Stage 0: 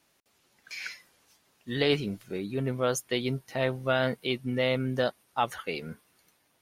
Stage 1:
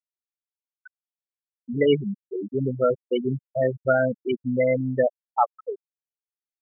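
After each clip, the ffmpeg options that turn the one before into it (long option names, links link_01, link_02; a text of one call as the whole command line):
ffmpeg -i in.wav -af "afftfilt=real='re*gte(hypot(re,im),0.158)':imag='im*gte(hypot(re,im),0.158)':win_size=1024:overlap=0.75,lowshelf=frequency=140:gain=-6,volume=8dB" out.wav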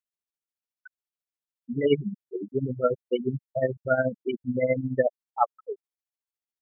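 ffmpeg -i in.wav -af "tremolo=f=14:d=0.72" out.wav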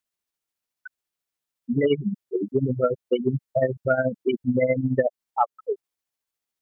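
ffmpeg -i in.wav -af "acompressor=threshold=-25dB:ratio=6,volume=7.5dB" out.wav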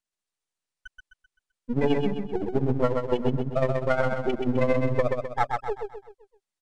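ffmpeg -i in.wav -filter_complex "[0:a]aeval=exprs='if(lt(val(0),0),0.251*val(0),val(0))':channel_layout=same,asplit=2[link_01][link_02];[link_02]aecho=0:1:129|258|387|516|645:0.631|0.271|0.117|0.0502|0.0216[link_03];[link_01][link_03]amix=inputs=2:normalize=0,aresample=22050,aresample=44100" out.wav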